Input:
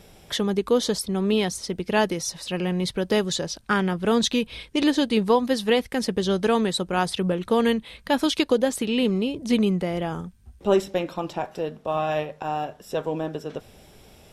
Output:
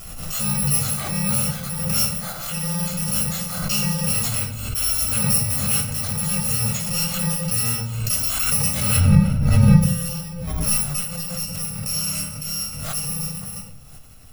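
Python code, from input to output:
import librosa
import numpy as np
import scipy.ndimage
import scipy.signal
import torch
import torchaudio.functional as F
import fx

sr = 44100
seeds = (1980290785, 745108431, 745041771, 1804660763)

y = fx.bit_reversed(x, sr, seeds[0], block=128)
y = fx.riaa(y, sr, side='playback', at=(8.96, 9.8), fade=0.02)
y = fx.room_shoebox(y, sr, seeds[1], volume_m3=680.0, walls='furnished', distance_m=6.2)
y = fx.pre_swell(y, sr, db_per_s=36.0)
y = y * 10.0 ** (-7.5 / 20.0)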